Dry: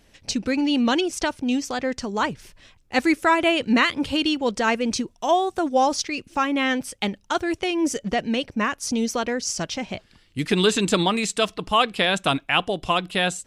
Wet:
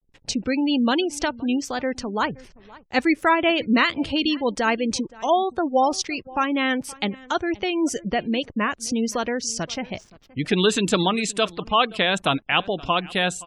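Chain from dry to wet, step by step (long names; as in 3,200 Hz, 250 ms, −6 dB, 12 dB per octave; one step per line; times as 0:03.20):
single-tap delay 522 ms −21 dB
slack as between gear wheels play −43.5 dBFS
gate on every frequency bin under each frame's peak −30 dB strong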